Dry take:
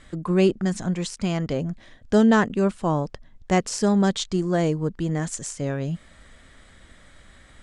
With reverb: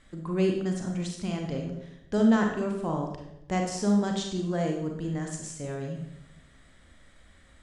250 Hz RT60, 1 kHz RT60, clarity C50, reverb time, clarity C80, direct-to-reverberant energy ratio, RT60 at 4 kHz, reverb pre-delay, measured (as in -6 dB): 1.1 s, 0.75 s, 4.0 dB, 0.80 s, 7.5 dB, 1.5 dB, 0.65 s, 31 ms